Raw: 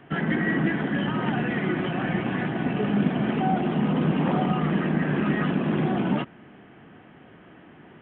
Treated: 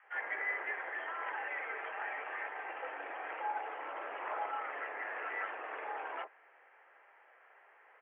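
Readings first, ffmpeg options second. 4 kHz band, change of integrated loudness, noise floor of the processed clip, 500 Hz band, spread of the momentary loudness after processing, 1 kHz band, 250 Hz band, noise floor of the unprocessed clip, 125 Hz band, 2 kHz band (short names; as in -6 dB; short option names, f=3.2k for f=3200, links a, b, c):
n/a, -14.5 dB, -64 dBFS, -16.0 dB, 6 LU, -8.5 dB, -38.5 dB, -50 dBFS, under -40 dB, -7.0 dB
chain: -filter_complex "[0:a]highpass=f=560:t=q:w=0.5412,highpass=f=560:t=q:w=1.307,lowpass=f=2.3k:t=q:w=0.5176,lowpass=f=2.3k:t=q:w=0.7071,lowpass=f=2.3k:t=q:w=1.932,afreqshift=87,acrossover=split=850[a][b];[a]adelay=30[c];[c][b]amix=inputs=2:normalize=0,volume=-6dB"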